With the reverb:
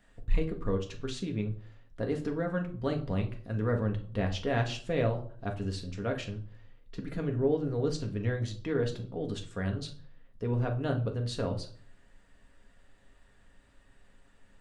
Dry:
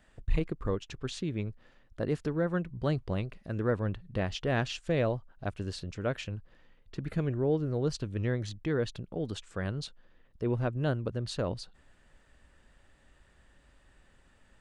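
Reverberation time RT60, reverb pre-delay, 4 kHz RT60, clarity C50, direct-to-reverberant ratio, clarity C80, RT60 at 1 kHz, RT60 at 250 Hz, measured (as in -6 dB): 0.50 s, 4 ms, 0.35 s, 12.0 dB, 2.0 dB, 17.5 dB, 0.45 s, 0.55 s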